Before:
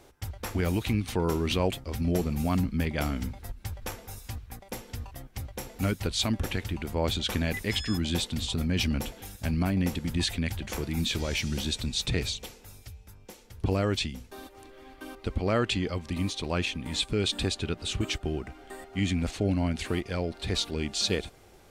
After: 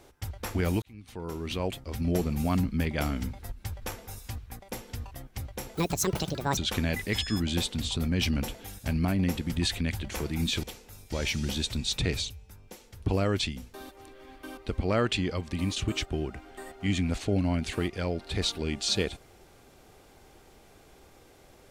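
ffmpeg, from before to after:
-filter_complex "[0:a]asplit=8[s0][s1][s2][s3][s4][s5][s6][s7];[s0]atrim=end=0.82,asetpts=PTS-STARTPTS,afade=t=out:st=0.816:d=0.004:c=hsin[s8];[s1]atrim=start=0.82:end=5.754,asetpts=PTS-STARTPTS,afade=t=in:d=1.37[s9];[s2]atrim=start=5.75:end=7.15,asetpts=PTS-STARTPTS,asetrate=74970,aresample=44100[s10];[s3]atrim=start=7.146:end=11.212[s11];[s4]atrim=start=12.388:end=12.882[s12];[s5]atrim=start=11.208:end=12.392[s13];[s6]atrim=start=12.878:end=16.342[s14];[s7]atrim=start=17.888[s15];[s8][s9]concat=n=2:v=0:a=1[s16];[s16][s10]acrossfade=d=0.004:c1=hsin:c2=hsin[s17];[s17][s11]acrossfade=d=0.004:c1=hsin:c2=hsin[s18];[s18][s12]acrossfade=d=0.004:c1=hsin:c2=hsin[s19];[s19][s13]acrossfade=d=0.004:c1=hsin:c2=hsin[s20];[s20][s14]acrossfade=d=0.004:c1=hsin:c2=hsin[s21];[s21][s15]acrossfade=d=0.004:c1=hsin:c2=hsin"

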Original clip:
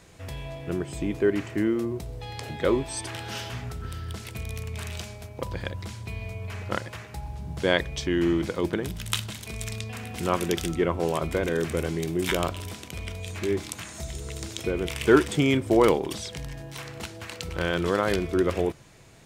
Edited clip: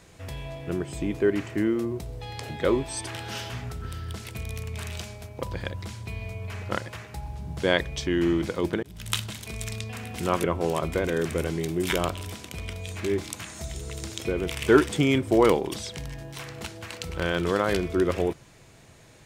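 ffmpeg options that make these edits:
-filter_complex "[0:a]asplit=3[s0][s1][s2];[s0]atrim=end=8.83,asetpts=PTS-STARTPTS,afade=t=out:st=8.826:d=0.004:c=hsin[s3];[s1]atrim=start=8.83:end=10.442,asetpts=PTS-STARTPTS,afade=t=in:d=0.28[s4];[s2]atrim=start=10.828[s5];[s3][s4]concat=n=2:v=0:a=1[s6];[s6][s5]acrossfade=d=0.004:c1=hsin:c2=hsin"

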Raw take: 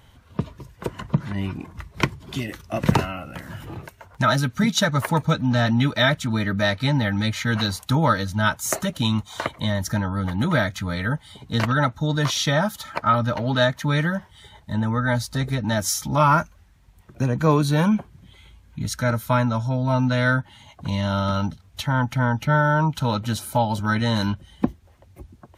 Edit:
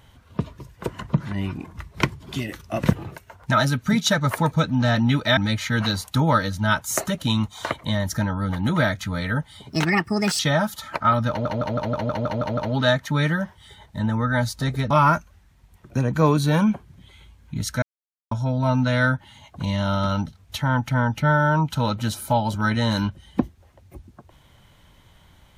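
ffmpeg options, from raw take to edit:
-filter_complex "[0:a]asplit=16[s0][s1][s2][s3][s4][s5][s6][s7][s8][s9][s10][s11][s12][s13][s14][s15];[s0]atrim=end=2.932[s16];[s1]atrim=start=3.638:end=6.082[s17];[s2]atrim=start=7.118:end=11.444[s18];[s3]atrim=start=11.44:end=12.41,asetpts=PTS-STARTPTS,asetrate=60858,aresample=44100[s19];[s4]atrim=start=12.406:end=13.472[s20];[s5]atrim=start=13.308:end=13.472[s21];[s6]atrim=start=13.308:end=13.472[s22];[s7]atrim=start=13.308:end=13.472[s23];[s8]atrim=start=13.308:end=13.472[s24];[s9]atrim=start=13.308:end=13.472[s25];[s10]atrim=start=13.308:end=13.472[s26];[s11]atrim=start=13.308:end=13.472[s27];[s12]atrim=start=13.308:end=15.642[s28];[s13]atrim=start=16.148:end=19.07,asetpts=PTS-STARTPTS,afade=t=out:st=2.918:d=0.004:c=hsin[s29];[s14]atrim=start=19.07:end=19.56,asetpts=PTS-STARTPTS,volume=0[s30];[s15]atrim=start=19.56,asetpts=PTS-STARTPTS,afade=t=in:d=0.004:c=hsin[s31];[s16][s17]acrossfade=d=0.004:c1=hsin:c2=hsin[s32];[s32][s18]acrossfade=d=0.004:c1=hsin:c2=hsin[s33];[s33][s19]acrossfade=d=0.004:c1=hsin:c2=hsin[s34];[s34][s20]acrossfade=d=0.004:c1=hsin:c2=hsin[s35];[s35][s21]acrossfade=d=0.004:c1=hsin:c2=hsin[s36];[s36][s22]acrossfade=d=0.004:c1=hsin:c2=hsin[s37];[s37][s23]acrossfade=d=0.004:c1=hsin:c2=hsin[s38];[s38][s24]acrossfade=d=0.004:c1=hsin:c2=hsin[s39];[s39][s25]acrossfade=d=0.004:c1=hsin:c2=hsin[s40];[s40][s26]acrossfade=d=0.004:c1=hsin:c2=hsin[s41];[s41][s27]acrossfade=d=0.004:c1=hsin:c2=hsin[s42];[s42][s28]acrossfade=d=0.004:c1=hsin:c2=hsin[s43];[s29][s30][s31]concat=n=3:v=0:a=1[s44];[s43][s44]acrossfade=d=0.004:c1=hsin:c2=hsin"

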